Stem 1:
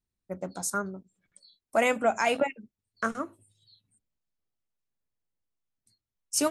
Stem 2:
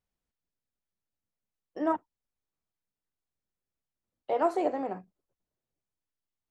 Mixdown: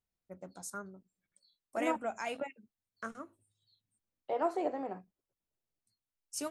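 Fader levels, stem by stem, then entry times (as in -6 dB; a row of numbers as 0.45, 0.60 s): -12.5, -5.5 dB; 0.00, 0.00 s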